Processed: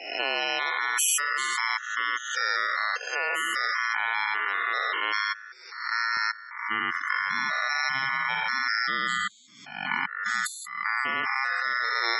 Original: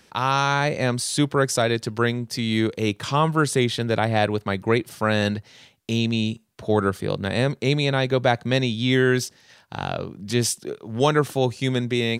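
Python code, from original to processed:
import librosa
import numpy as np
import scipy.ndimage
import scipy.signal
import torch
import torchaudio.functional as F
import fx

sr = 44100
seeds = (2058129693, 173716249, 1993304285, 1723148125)

y = fx.spec_steps(x, sr, hold_ms=200)
y = fx.level_steps(y, sr, step_db=16)
y = fx.high_shelf(y, sr, hz=2700.0, db=12.0)
y = fx.spec_topn(y, sr, count=32)
y = y * np.sin(2.0 * np.pi * 1600.0 * np.arange(len(y)) / sr)
y = fx.highpass(y, sr, hz=fx.steps((0.0, 390.0), (6.17, 150.0)), slope=24)
y = fx.pre_swell(y, sr, db_per_s=69.0)
y = y * librosa.db_to_amplitude(7.0)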